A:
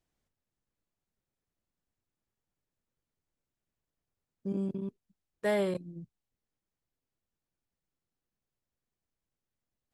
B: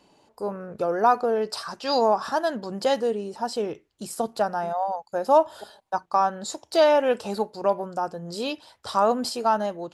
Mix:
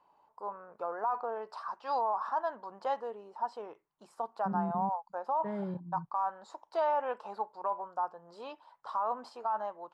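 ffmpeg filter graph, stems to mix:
ffmpeg -i stem1.wav -i stem2.wav -filter_complex "[0:a]lowpass=1600,equalizer=frequency=160:width_type=o:width=1.3:gain=14,volume=-13dB[link_01];[1:a]bandpass=frequency=1000:width_type=q:width=3.7:csg=0,alimiter=limit=-23.5dB:level=0:latency=1:release=16,volume=0.5dB[link_02];[link_01][link_02]amix=inputs=2:normalize=0" out.wav

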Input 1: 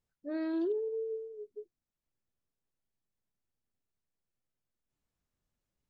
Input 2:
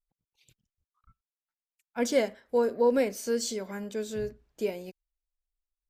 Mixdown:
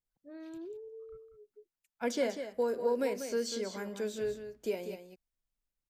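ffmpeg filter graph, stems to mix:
ffmpeg -i stem1.wav -i stem2.wav -filter_complex "[0:a]volume=-12dB[link_01];[1:a]acrossover=split=220|5600[link_02][link_03][link_04];[link_02]acompressor=threshold=-50dB:ratio=4[link_05];[link_03]acompressor=threshold=-26dB:ratio=4[link_06];[link_04]acompressor=threshold=-49dB:ratio=4[link_07];[link_05][link_06][link_07]amix=inputs=3:normalize=0,adelay=50,volume=-2dB,asplit=2[link_08][link_09];[link_09]volume=-9dB,aecho=0:1:193:1[link_10];[link_01][link_08][link_10]amix=inputs=3:normalize=0" out.wav

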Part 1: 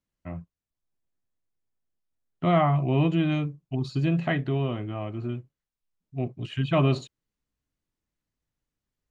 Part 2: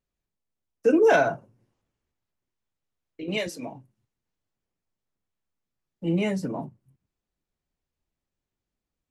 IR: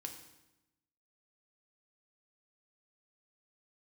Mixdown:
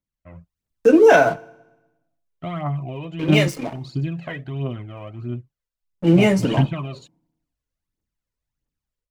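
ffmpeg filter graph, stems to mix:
-filter_complex "[0:a]acompressor=threshold=-23dB:ratio=6,aphaser=in_gain=1:out_gain=1:delay=2.2:decay=0.59:speed=1.5:type=triangular,volume=-8.5dB[link_01];[1:a]bandreject=frequency=3900:width=12,aeval=exprs='sgn(val(0))*max(abs(val(0))-0.00668,0)':channel_layout=same,volume=-4.5dB,asplit=3[link_02][link_03][link_04];[link_03]volume=-11dB[link_05];[link_04]apad=whole_len=401569[link_06];[link_01][link_06]sidechaingate=range=-9dB:threshold=-39dB:ratio=16:detection=peak[link_07];[2:a]atrim=start_sample=2205[link_08];[link_05][link_08]afir=irnorm=-1:irlink=0[link_09];[link_07][link_02][link_09]amix=inputs=3:normalize=0,dynaudnorm=framelen=310:gausssize=3:maxgain=14.5dB"

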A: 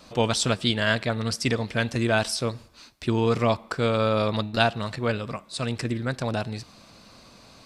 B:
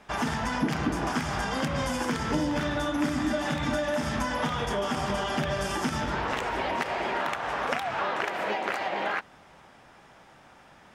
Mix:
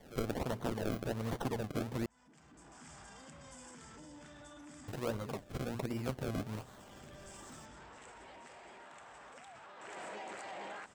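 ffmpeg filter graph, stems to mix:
ffmpeg -i stem1.wav -i stem2.wav -filter_complex "[0:a]lowshelf=frequency=500:gain=-3.5,bandreject=frequency=60:width_type=h:width=6,bandreject=frequency=120:width_type=h:width=6,bandreject=frequency=180:width_type=h:width=6,bandreject=frequency=240:width_type=h:width=6,bandreject=frequency=300:width_type=h:width=6,bandreject=frequency=360:width_type=h:width=6,bandreject=frequency=420:width_type=h:width=6,acrusher=samples=33:mix=1:aa=0.000001:lfo=1:lforange=33:lforate=1.3,volume=-5dB,asplit=3[link_01][link_02][link_03];[link_01]atrim=end=2.06,asetpts=PTS-STARTPTS,afade=type=out:start_time=2.056:duration=0.004:curve=hsin[link_04];[link_02]atrim=start=2.06:end=4.88,asetpts=PTS-STARTPTS,volume=0[link_05];[link_03]atrim=start=4.88,asetpts=PTS-STARTPTS,afade=type=in:duration=0.004:curve=hsin[link_06];[link_04][link_05][link_06]concat=n=3:v=0:a=1,asplit=2[link_07][link_08];[1:a]acontrast=85,alimiter=limit=-23.5dB:level=0:latency=1:release=14,lowpass=frequency=7900:width_type=q:width=10,adelay=1650,volume=-14dB,afade=type=in:start_time=9.76:duration=0.23:silence=0.334965[link_09];[link_08]apad=whole_len=555609[link_10];[link_09][link_10]sidechaincompress=threshold=-43dB:ratio=8:attack=8.9:release=743[link_11];[link_07][link_11]amix=inputs=2:normalize=0,acrossover=split=1100|5000[link_12][link_13][link_14];[link_12]acompressor=threshold=-33dB:ratio=4[link_15];[link_13]acompressor=threshold=-49dB:ratio=4[link_16];[link_14]acompressor=threshold=-53dB:ratio=4[link_17];[link_15][link_16][link_17]amix=inputs=3:normalize=0" out.wav

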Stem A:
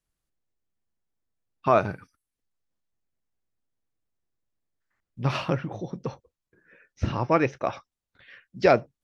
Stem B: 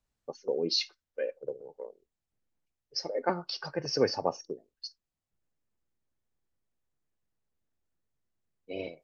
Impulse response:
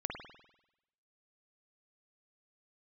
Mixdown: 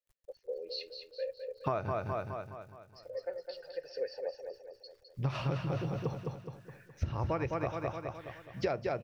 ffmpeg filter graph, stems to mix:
-filter_complex "[0:a]lowshelf=frequency=420:gain=11,bandreject=frequency=58.83:width_type=h:width=4,bandreject=frequency=117.66:width_type=h:width=4,bandreject=frequency=176.49:width_type=h:width=4,bandreject=frequency=235.32:width_type=h:width=4,acrusher=bits=10:mix=0:aa=0.000001,volume=-5dB,asplit=3[link_01][link_02][link_03];[link_02]volume=-5.5dB[link_04];[1:a]asplit=3[link_05][link_06][link_07];[link_05]bandpass=frequency=530:width_type=q:width=8,volume=0dB[link_08];[link_06]bandpass=frequency=1840:width_type=q:width=8,volume=-6dB[link_09];[link_07]bandpass=frequency=2480:width_type=q:width=8,volume=-9dB[link_10];[link_08][link_09][link_10]amix=inputs=3:normalize=0,equalizer=frequency=4300:width_type=o:width=0.34:gain=11.5,volume=-0.5dB,asplit=2[link_11][link_12];[link_12]volume=-7dB[link_13];[link_03]apad=whole_len=398380[link_14];[link_11][link_14]sidechaincompress=threshold=-34dB:ratio=8:attack=16:release=1270[link_15];[link_04][link_13]amix=inputs=2:normalize=0,aecho=0:1:209|418|627|836|1045|1254|1463:1|0.48|0.23|0.111|0.0531|0.0255|0.0122[link_16];[link_01][link_15][link_16]amix=inputs=3:normalize=0,equalizer=frequency=230:width_type=o:width=1.2:gain=-10,acompressor=threshold=-29dB:ratio=12"

